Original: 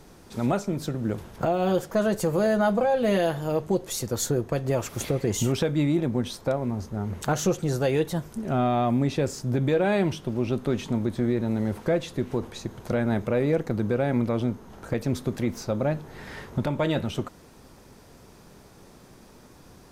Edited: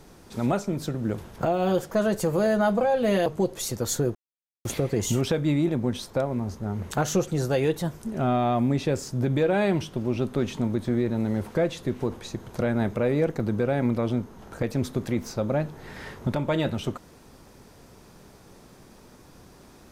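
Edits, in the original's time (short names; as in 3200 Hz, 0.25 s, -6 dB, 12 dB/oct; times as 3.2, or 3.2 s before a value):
3.26–3.57 cut
4.46–4.96 mute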